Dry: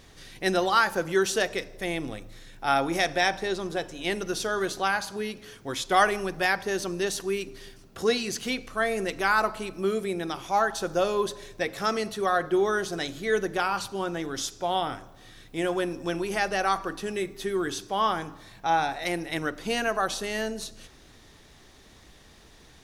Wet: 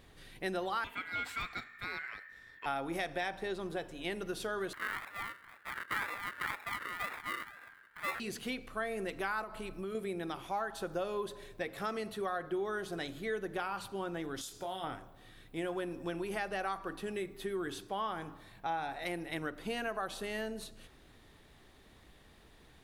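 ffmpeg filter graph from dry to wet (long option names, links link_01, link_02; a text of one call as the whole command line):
ffmpeg -i in.wav -filter_complex "[0:a]asettb=1/sr,asplit=3[link_01][link_02][link_03];[link_01]atrim=end=0.844[link_04];[link_02]atrim=start=0.84:end=2.66,asetpts=PTS-STARTPTS,afade=type=in:duration=0.004:curve=qsin,afade=type=out:start_time=1.816:duration=0.004:curve=qsin,asoftclip=type=hard:threshold=-21.5dB,equalizer=frequency=8800:width=1.6:gain=-14,aeval=exprs='val(0)*sin(2*PI*1800*n/s)':channel_layout=same[link_05];[link_03]atrim=start=2.656[link_06];[link_04][link_05]acrossfade=duration=0.004:curve1=hsin:curve2=qsin[link_07];[link_07][link_06]acrossfade=duration=0.004:curve1=qsin:curve2=hsin,asettb=1/sr,asplit=3[link_08][link_09][link_10];[link_08]atrim=end=4.734[link_11];[link_09]atrim=start=4.73:end=8.2,asetpts=PTS-STARTPTS,afade=type=in:duration=0.004:curve=qsin,afade=type=out:start_time=3.466:duration=0.004:curve=qsin,acrusher=samples=41:mix=1:aa=0.000001:lfo=1:lforange=24.6:lforate=2,aeval=exprs='val(0)*sin(2*PI*1600*n/s)':channel_layout=same[link_12];[link_10]atrim=start=8.196[link_13];[link_11][link_12]acrossfade=duration=0.004:curve1=hsin:curve2=qsin[link_14];[link_14][link_13]acrossfade=duration=0.004:curve1=qsin:curve2=hsin,asettb=1/sr,asplit=3[link_15][link_16][link_17];[link_15]atrim=end=9.434[link_18];[link_16]atrim=start=9.43:end=9.95,asetpts=PTS-STARTPTS,afade=type=in:duration=0.004:curve=qsin,afade=type=out:start_time=0.516:duration=0.004:curve=qsin,acompressor=threshold=-30dB:ratio=3:attack=3.2:release=140:knee=1:detection=peak,asubboost=boost=11.5:cutoff=150[link_19];[link_17]atrim=start=9.946[link_20];[link_18][link_19]acrossfade=duration=0.004:curve1=hsin:curve2=qsin[link_21];[link_21][link_20]acrossfade=duration=0.004:curve1=qsin:curve2=hsin,asettb=1/sr,asplit=3[link_22][link_23][link_24];[link_22]atrim=end=14.414[link_25];[link_23]atrim=start=14.41:end=14.84,asetpts=PTS-STARTPTS,afade=type=in:duration=0.004:curve=qsin,afade=type=out:start_time=0.426:duration=0.004:curve=qsin,bass=frequency=250:gain=0,treble=frequency=4000:gain=10,acompressor=threshold=-30dB:ratio=4:attack=3.2:release=140:knee=1:detection=peak,asplit=2[link_26][link_27];[link_27]adelay=26,volume=-6dB[link_28];[link_26][link_28]amix=inputs=2:normalize=0,atrim=end_sample=18963[link_29];[link_24]atrim=start=14.836[link_30];[link_25][link_29]acrossfade=duration=0.004:curve1=hsin:curve2=qsin[link_31];[link_31][link_30]acrossfade=duration=0.004:curve1=qsin:curve2=hsin,equalizer=frequency=5900:width_type=o:width=0.75:gain=-10.5,acompressor=threshold=-28dB:ratio=3,volume=-6dB" out.wav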